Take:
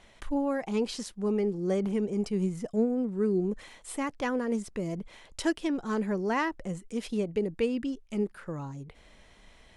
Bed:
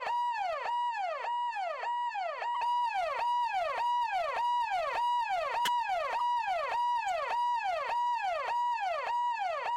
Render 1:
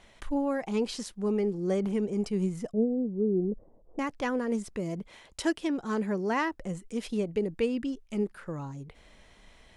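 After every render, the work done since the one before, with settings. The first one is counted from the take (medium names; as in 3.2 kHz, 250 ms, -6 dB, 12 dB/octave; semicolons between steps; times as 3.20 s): 2.71–3.99 s: inverse Chebyshev low-pass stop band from 3.5 kHz, stop band 80 dB; 4.76–6.60 s: high-pass 51 Hz 6 dB/octave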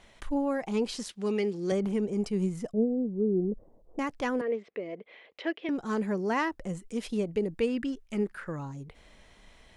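1.09–1.72 s: frequency weighting D; 4.41–5.69 s: cabinet simulation 430–3200 Hz, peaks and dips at 460 Hz +7 dB, 940 Hz -8 dB, 1.4 kHz -6 dB, 2.1 kHz +4 dB; 7.67–8.56 s: dynamic bell 1.7 kHz, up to +8 dB, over -59 dBFS, Q 1.6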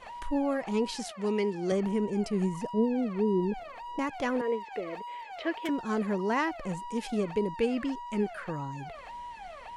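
add bed -11 dB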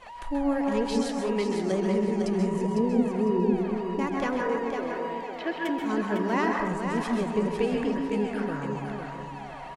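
on a send: feedback delay 503 ms, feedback 27%, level -6 dB; on the sum: plate-style reverb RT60 0.79 s, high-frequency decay 0.35×, pre-delay 120 ms, DRR 1 dB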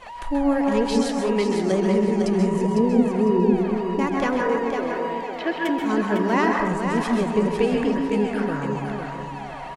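trim +5.5 dB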